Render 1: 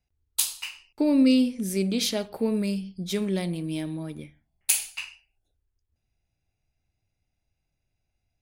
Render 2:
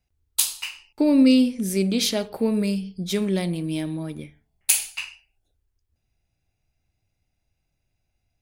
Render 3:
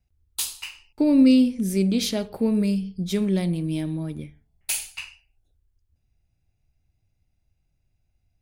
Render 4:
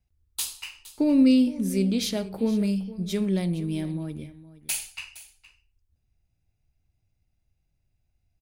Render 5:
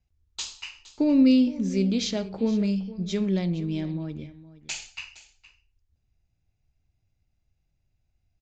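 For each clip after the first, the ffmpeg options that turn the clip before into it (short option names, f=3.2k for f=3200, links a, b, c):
-af "bandreject=f=434.7:t=h:w=4,bandreject=f=869.4:t=h:w=4,volume=3.5dB"
-filter_complex "[0:a]lowshelf=f=230:g=10,acrossover=split=5400[a][b];[b]asoftclip=type=hard:threshold=-18.5dB[c];[a][c]amix=inputs=2:normalize=0,volume=-4dB"
-af "aecho=1:1:465:0.141,volume=-2.5dB"
-af "aresample=16000,aresample=44100"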